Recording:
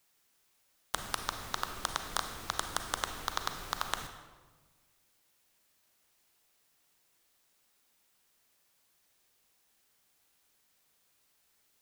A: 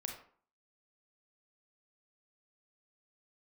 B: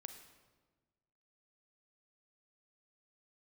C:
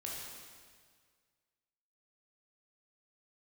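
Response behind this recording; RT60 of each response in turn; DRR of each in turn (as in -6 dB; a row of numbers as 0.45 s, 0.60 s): B; 0.50 s, 1.3 s, 1.8 s; 1.5 dB, 7.0 dB, -4.0 dB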